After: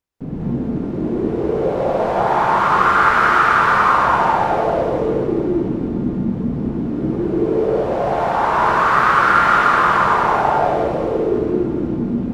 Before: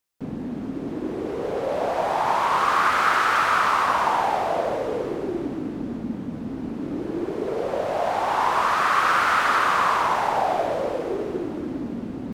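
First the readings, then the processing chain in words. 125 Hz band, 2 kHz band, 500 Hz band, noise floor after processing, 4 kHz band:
+13.0 dB, +6.0 dB, +7.5 dB, -24 dBFS, +0.5 dB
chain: tilt -2.5 dB/oct; non-linear reverb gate 0.23 s rising, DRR -5.5 dB; dynamic EQ 1500 Hz, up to +5 dB, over -27 dBFS, Q 2.6; reverse; upward compressor, threshold -32 dBFS; reverse; gain -2 dB

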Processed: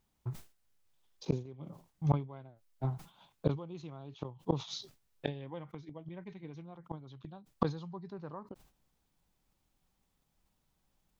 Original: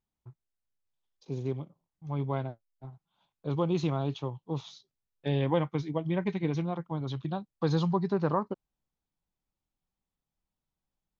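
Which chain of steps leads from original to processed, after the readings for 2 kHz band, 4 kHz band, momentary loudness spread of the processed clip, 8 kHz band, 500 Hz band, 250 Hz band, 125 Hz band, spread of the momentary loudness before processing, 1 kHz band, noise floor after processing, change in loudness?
-10.0 dB, -3.5 dB, 15 LU, n/a, -9.0 dB, -8.0 dB, -5.5 dB, 14 LU, -8.0 dB, -78 dBFS, -8.0 dB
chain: flipped gate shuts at -27 dBFS, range -28 dB; sustainer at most 150 dB/s; gain +11 dB

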